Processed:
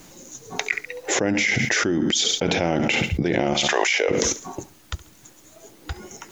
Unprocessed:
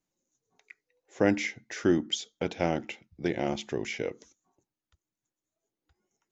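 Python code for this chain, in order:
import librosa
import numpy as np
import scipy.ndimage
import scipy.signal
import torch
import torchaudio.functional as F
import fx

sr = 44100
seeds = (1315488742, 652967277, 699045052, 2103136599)

p1 = fx.highpass(x, sr, hz=fx.line((3.53, 970.0), (4.08, 430.0)), slope=24, at=(3.53, 4.08), fade=0.02)
p2 = p1 + fx.echo_feedback(p1, sr, ms=69, feedback_pct=38, wet_db=-19.0, dry=0)
p3 = fx.env_flatten(p2, sr, amount_pct=100)
y = p3 * librosa.db_to_amplitude(-1.0)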